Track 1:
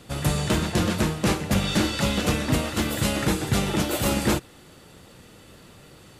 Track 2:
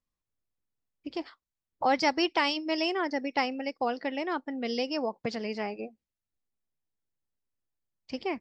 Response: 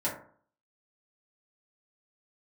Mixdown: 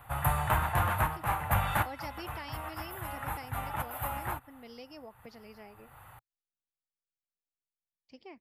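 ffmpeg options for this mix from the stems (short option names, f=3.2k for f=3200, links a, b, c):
-filter_complex "[0:a]firequalizer=gain_entry='entry(120,0);entry(180,-16);entry(390,-17);entry(810,9);entry(5200,-26);entry(12000,6)':delay=0.05:min_phase=1,volume=-2.5dB[a];[1:a]volume=-17.5dB,asplit=2[b][c];[c]apad=whole_len=277408[d];[a][d]sidechaincompress=threshold=-56dB:ratio=10:attack=44:release=298[e];[e][b]amix=inputs=2:normalize=0"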